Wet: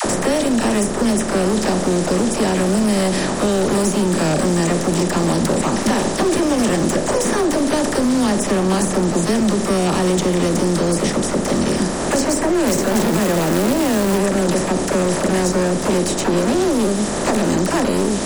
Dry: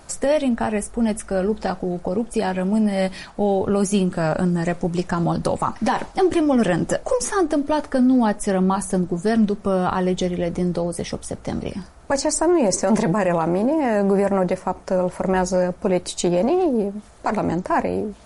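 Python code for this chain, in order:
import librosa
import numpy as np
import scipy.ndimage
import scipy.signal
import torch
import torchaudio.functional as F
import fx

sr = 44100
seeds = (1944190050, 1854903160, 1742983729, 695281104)

y = fx.bin_compress(x, sr, power=0.4)
y = fx.dynamic_eq(y, sr, hz=980.0, q=1.0, threshold_db=-30.0, ratio=4.0, max_db=-6)
y = np.clip(y, -10.0 ** (-13.5 / 20.0), 10.0 ** (-13.5 / 20.0))
y = fx.dispersion(y, sr, late='lows', ms=52.0, hz=600.0)
y = fx.quant_companded(y, sr, bits=4, at=(12.67, 14.18))
y = fx.band_squash(y, sr, depth_pct=70)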